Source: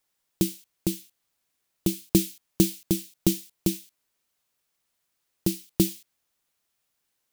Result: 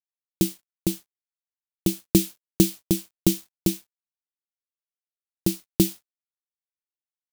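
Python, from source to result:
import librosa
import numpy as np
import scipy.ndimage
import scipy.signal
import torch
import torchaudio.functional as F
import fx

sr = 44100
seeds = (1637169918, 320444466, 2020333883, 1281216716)

y = np.sign(x) * np.maximum(np.abs(x) - 10.0 ** (-47.0 / 20.0), 0.0)
y = y * 10.0 ** (2.5 / 20.0)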